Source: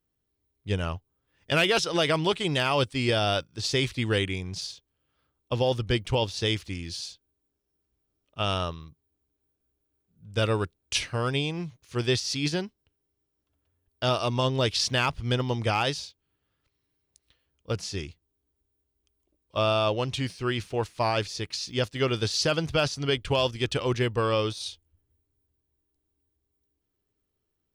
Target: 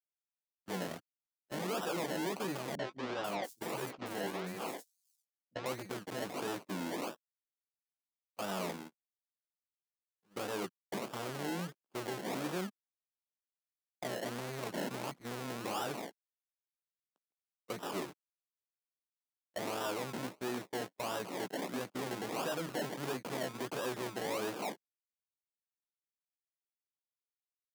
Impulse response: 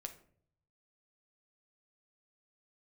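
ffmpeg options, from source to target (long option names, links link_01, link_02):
-filter_complex "[0:a]aeval=exprs='sgn(val(0))*max(abs(val(0))-0.00335,0)':channel_layout=same,acrossover=split=240[link_01][link_02];[link_02]acompressor=threshold=-29dB:ratio=2.5[link_03];[link_01][link_03]amix=inputs=2:normalize=0,equalizer=frequency=9900:width_type=o:width=1.2:gain=-14,asplit=2[link_04][link_05];[link_05]adelay=16,volume=-5dB[link_06];[link_04][link_06]amix=inputs=2:normalize=0,alimiter=limit=-23dB:level=0:latency=1:release=216,acrusher=samples=29:mix=1:aa=0.000001:lfo=1:lforange=17.4:lforate=1.5,asoftclip=type=tanh:threshold=-40dB,highpass=frequency=190:width=0.5412,highpass=frequency=190:width=1.3066,asettb=1/sr,asplit=3[link_07][link_08][link_09];[link_07]atrim=end=2.754[link_10];[link_08]atrim=start=2.75:end=5.66,asetpts=PTS-STARTPTS,afade=type=in:duration=0.004:curve=qsin,afade=type=out:start_time=2.906:duration=0.004:curve=qsin,acrossover=split=240|5500[link_11][link_12][link_13];[link_12]adelay=40[link_14];[link_13]adelay=490[link_15];[link_11][link_14][link_15]amix=inputs=3:normalize=0,atrim=end_sample=128331[link_16];[link_09]atrim=start=5.656[link_17];[link_10][link_16]acrossfade=duration=0.004:curve1=hsin:curve2=qsin[link_18];[link_18][link_17]acrossfade=duration=0.004:curve1=qsin:curve2=hsin,agate=range=-24dB:threshold=-52dB:ratio=16:detection=peak,volume=7dB"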